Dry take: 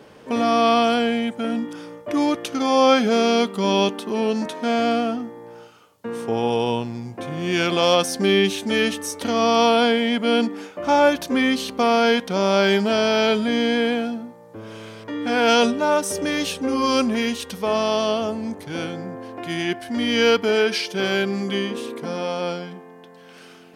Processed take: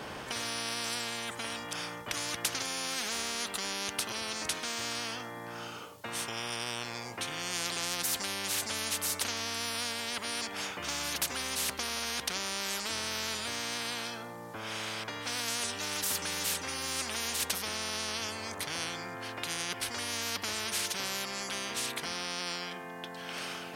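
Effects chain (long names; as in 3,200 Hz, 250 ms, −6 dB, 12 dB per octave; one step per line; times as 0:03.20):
every bin compressed towards the loudest bin 10 to 1
level −9 dB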